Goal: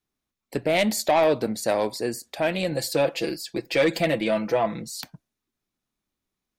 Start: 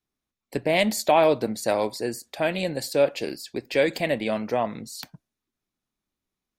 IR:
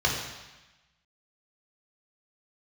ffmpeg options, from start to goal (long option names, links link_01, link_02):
-filter_complex "[0:a]asettb=1/sr,asplit=3[link_01][link_02][link_03];[link_01]atrim=end=2.714[link_04];[link_02]atrim=start=2.71:end=5.01,asetpts=PTS-STARTPTS,afade=type=in:duration=0.004:curve=qsin,afade=type=out:start_time=2.296:duration=0.004:curve=qsin,aecho=1:1:6:0.72,atrim=end_sample=101430[link_05];[link_03]atrim=start=5.006[link_06];[link_04][link_05]acrossfade=duration=0.004:curve1=hsin:curve2=qsin[link_07];[link_07][link_06]acrossfade=duration=0.004:curve1=qsin:curve2=hsin,asoftclip=type=tanh:threshold=-14dB,volume=1.5dB"